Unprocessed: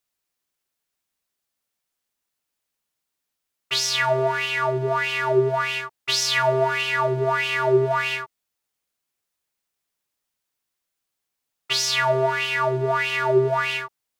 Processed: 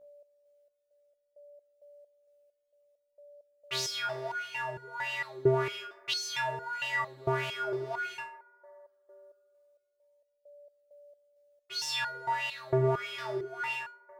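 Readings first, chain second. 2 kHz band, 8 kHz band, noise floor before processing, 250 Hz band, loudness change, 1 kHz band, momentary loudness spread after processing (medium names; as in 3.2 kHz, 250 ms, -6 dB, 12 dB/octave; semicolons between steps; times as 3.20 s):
-11.0 dB, -12.0 dB, -82 dBFS, no reading, -11.0 dB, -11.0 dB, 9 LU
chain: bucket-brigade echo 74 ms, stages 1024, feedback 80%, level -18.5 dB; whistle 580 Hz -47 dBFS; resonator arpeggio 4.4 Hz 65–480 Hz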